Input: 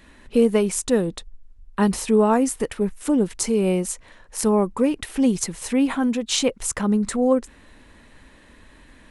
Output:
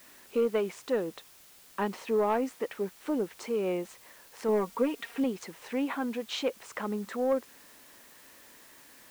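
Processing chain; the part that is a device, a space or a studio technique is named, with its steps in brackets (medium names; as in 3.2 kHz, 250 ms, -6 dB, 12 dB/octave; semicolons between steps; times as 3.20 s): tape answering machine (band-pass 350–2800 Hz; saturation -12.5 dBFS, distortion -20 dB; wow and flutter; white noise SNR 23 dB); 4.48–5.24 s: comb 4.3 ms, depth 70%; trim -5.5 dB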